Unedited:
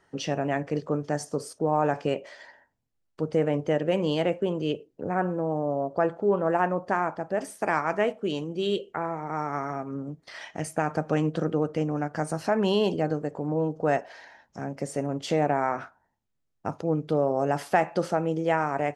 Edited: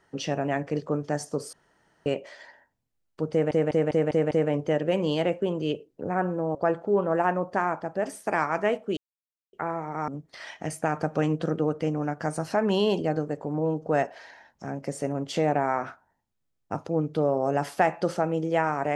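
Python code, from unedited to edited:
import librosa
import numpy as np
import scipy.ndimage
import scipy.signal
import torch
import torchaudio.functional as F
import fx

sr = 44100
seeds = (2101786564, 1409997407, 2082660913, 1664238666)

y = fx.edit(x, sr, fx.room_tone_fill(start_s=1.53, length_s=0.53),
    fx.stutter(start_s=3.31, slice_s=0.2, count=6),
    fx.cut(start_s=5.55, length_s=0.35),
    fx.silence(start_s=8.32, length_s=0.56),
    fx.cut(start_s=9.43, length_s=0.59), tone=tone)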